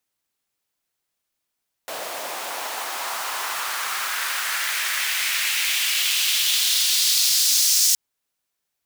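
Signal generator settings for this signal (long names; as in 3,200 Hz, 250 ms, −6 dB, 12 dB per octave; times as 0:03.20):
filter sweep on noise pink, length 6.07 s highpass, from 570 Hz, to 5,800 Hz, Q 2, exponential, gain ramp +17 dB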